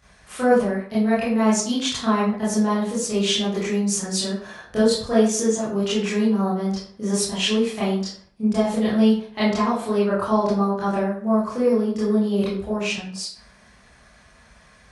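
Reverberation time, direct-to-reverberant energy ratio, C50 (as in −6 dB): 0.50 s, −10.5 dB, 2.0 dB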